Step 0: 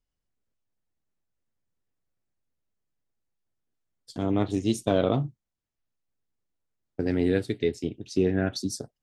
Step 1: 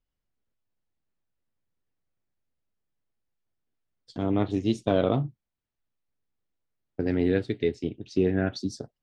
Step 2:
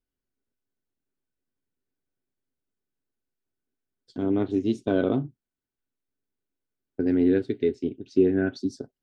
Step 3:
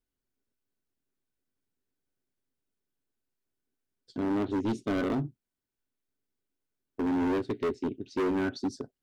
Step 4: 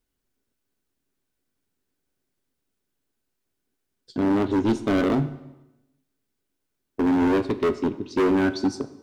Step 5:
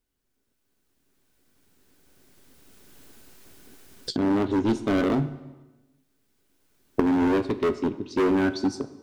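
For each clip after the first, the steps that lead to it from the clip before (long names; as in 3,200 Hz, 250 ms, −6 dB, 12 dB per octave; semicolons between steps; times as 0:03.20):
low-pass filter 4,200 Hz 12 dB per octave
hollow resonant body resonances 270/380/1,500 Hz, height 11 dB, ringing for 45 ms; level −5.5 dB
hard clipping −25.5 dBFS, distortion −6 dB
convolution reverb RT60 0.95 s, pre-delay 6 ms, DRR 11.5 dB; level +7.5 dB
camcorder AGC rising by 10 dB per second; level −1.5 dB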